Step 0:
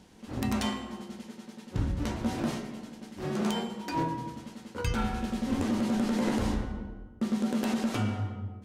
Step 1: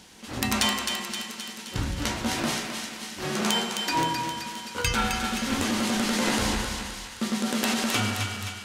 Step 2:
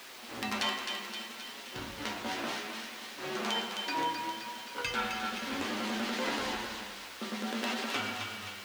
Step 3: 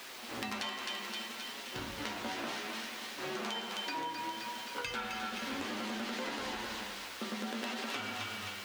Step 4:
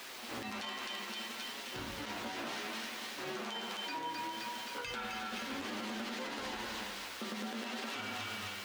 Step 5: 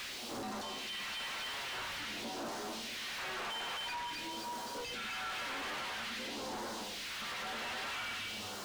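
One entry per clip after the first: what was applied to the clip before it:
tilt shelf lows -7 dB; thinning echo 0.262 s, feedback 62%, high-pass 860 Hz, level -5 dB; gain +6.5 dB
requantised 6-bit, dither triangular; flange 0.63 Hz, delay 7.1 ms, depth 3.8 ms, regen +55%; three-band isolator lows -15 dB, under 240 Hz, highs -14 dB, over 4900 Hz; gain -2 dB
compressor, threshold -36 dBFS, peak gain reduction 8.5 dB; gain +1 dB
limiter -31 dBFS, peak gain reduction 11 dB
soft clip -36.5 dBFS, distortion -16 dB; phaser stages 2, 0.49 Hz, lowest notch 120–2300 Hz; overdrive pedal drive 28 dB, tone 3200 Hz, clips at -33.5 dBFS

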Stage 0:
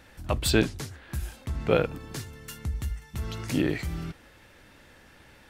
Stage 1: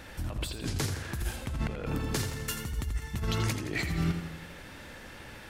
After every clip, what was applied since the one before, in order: negative-ratio compressor -35 dBFS, ratio -1; warbling echo 84 ms, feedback 59%, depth 53 cents, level -8.5 dB; gain +1.5 dB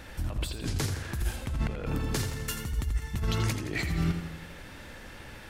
low shelf 65 Hz +6 dB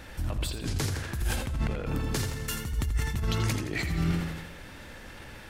sustainer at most 49 dB/s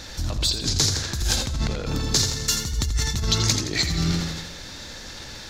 in parallel at -11 dB: hard clip -25 dBFS, distortion -15 dB; on the sum: band shelf 5100 Hz +14 dB 1.2 oct; gain +2 dB

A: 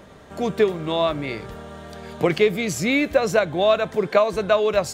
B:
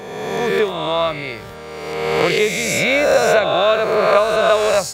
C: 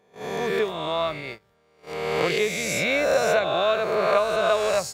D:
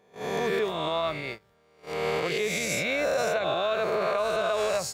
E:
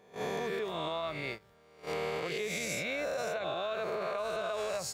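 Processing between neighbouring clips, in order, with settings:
spectral swells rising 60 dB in 1.69 s; HPF 130 Hz 6 dB/oct; bell 280 Hz -7 dB 1.1 oct; gain +2 dB
gate -26 dBFS, range -23 dB; gain -7 dB
limiter -18.5 dBFS, peak gain reduction 10 dB
compressor 6:1, threshold -34 dBFS, peak gain reduction 11 dB; gain +1.5 dB

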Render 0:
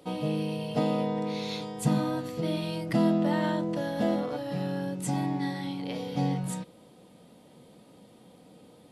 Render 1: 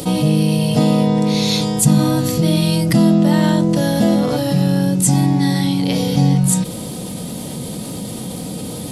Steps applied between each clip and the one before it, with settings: tone controls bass +10 dB, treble +14 dB; fast leveller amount 50%; gain +4 dB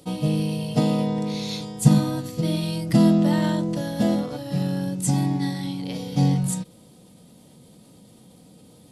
high shelf 9800 Hz -5 dB; upward expander 2.5:1, over -24 dBFS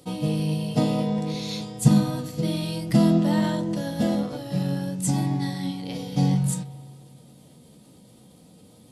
flange 0.56 Hz, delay 7.7 ms, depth 9.2 ms, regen +65%; on a send at -17.5 dB: reverb RT60 2.1 s, pre-delay 0.123 s; on the sum: gain +3 dB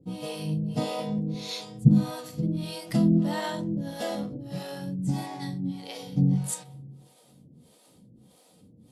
harmonic tremolo 1.6 Hz, depth 100%, crossover 400 Hz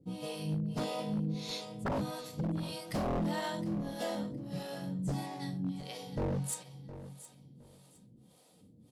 wavefolder -22.5 dBFS; feedback echo 0.714 s, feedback 22%, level -14.5 dB; gain -5 dB

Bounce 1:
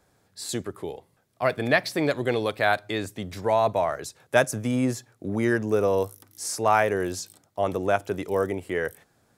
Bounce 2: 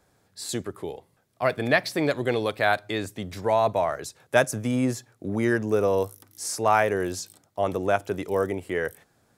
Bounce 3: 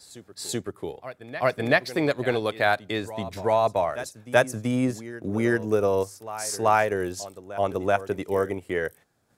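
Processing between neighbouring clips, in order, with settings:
nothing audible
transient shaper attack +1 dB, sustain -6 dB; reverse echo 0.382 s -15 dB

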